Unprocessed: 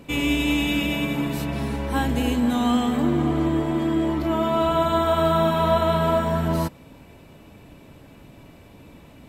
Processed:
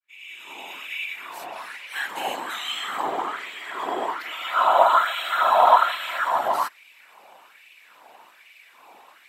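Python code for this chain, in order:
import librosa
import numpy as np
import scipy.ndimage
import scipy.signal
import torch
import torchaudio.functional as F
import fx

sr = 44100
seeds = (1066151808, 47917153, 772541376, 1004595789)

y = fx.fade_in_head(x, sr, length_s=2.77)
y = fx.whisperise(y, sr, seeds[0])
y = fx.filter_lfo_highpass(y, sr, shape='sine', hz=1.2, low_hz=770.0, high_hz=2400.0, q=3.3)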